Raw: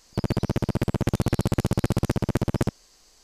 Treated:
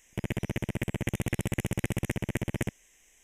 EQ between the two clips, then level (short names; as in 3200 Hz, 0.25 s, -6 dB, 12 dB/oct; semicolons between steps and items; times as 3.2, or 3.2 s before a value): Butterworth band-stop 4500 Hz, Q 1.5; resonant high shelf 1600 Hz +6.5 dB, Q 3; -7.5 dB